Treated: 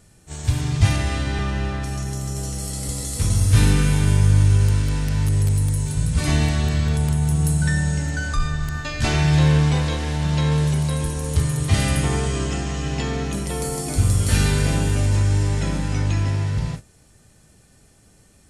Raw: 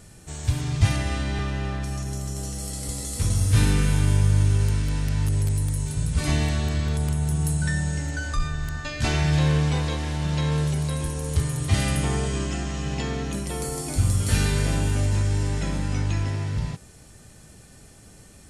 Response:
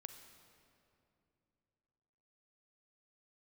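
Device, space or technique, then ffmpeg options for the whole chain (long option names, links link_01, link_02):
keyed gated reverb: -filter_complex "[0:a]asplit=3[link_01][link_02][link_03];[1:a]atrim=start_sample=2205[link_04];[link_02][link_04]afir=irnorm=-1:irlink=0[link_05];[link_03]apad=whole_len=815621[link_06];[link_05][link_06]sidechaingate=range=-33dB:threshold=-34dB:ratio=16:detection=peak,volume=10.5dB[link_07];[link_01][link_07]amix=inputs=2:normalize=0,volume=-5.5dB"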